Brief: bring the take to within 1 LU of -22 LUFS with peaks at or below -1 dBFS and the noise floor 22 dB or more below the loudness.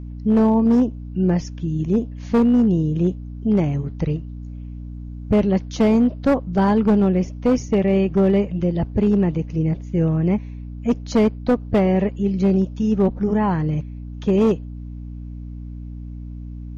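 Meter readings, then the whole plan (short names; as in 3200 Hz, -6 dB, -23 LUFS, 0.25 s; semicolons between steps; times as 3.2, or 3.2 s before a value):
clipped 1.7%; flat tops at -11.0 dBFS; hum 60 Hz; harmonics up to 300 Hz; hum level -31 dBFS; loudness -19.5 LUFS; peak -11.0 dBFS; loudness target -22.0 LUFS
-> clip repair -11 dBFS; notches 60/120/180/240/300 Hz; gain -2.5 dB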